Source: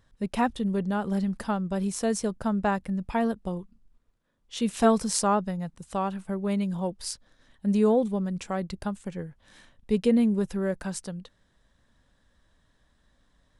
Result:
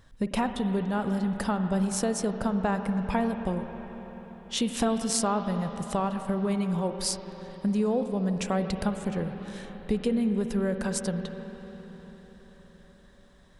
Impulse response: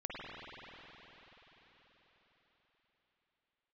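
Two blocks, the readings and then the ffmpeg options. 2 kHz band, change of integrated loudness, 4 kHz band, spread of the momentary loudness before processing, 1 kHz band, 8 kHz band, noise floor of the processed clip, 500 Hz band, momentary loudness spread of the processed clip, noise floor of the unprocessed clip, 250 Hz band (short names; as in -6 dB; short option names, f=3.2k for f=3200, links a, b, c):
0.0 dB, -1.0 dB, +3.0 dB, 13 LU, -1.5 dB, +1.5 dB, -55 dBFS, -1.5 dB, 14 LU, -68 dBFS, -0.5 dB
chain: -filter_complex "[0:a]acompressor=threshold=-32dB:ratio=5,asplit=2[a][b];[1:a]atrim=start_sample=2205[c];[b][c]afir=irnorm=-1:irlink=0,volume=-6.5dB[d];[a][d]amix=inputs=2:normalize=0,volume=5dB"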